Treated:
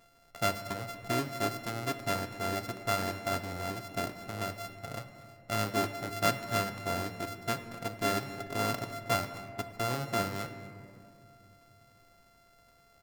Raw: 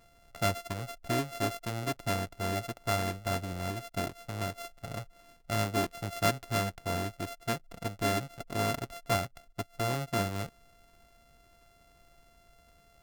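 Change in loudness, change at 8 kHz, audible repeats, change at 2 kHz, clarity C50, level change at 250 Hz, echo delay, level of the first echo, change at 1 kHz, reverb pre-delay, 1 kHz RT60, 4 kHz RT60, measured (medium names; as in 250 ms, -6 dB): 0.0 dB, -0.5 dB, 1, +0.5 dB, 9.5 dB, -1.0 dB, 240 ms, -18.5 dB, +1.0 dB, 7 ms, 2.2 s, 1.1 s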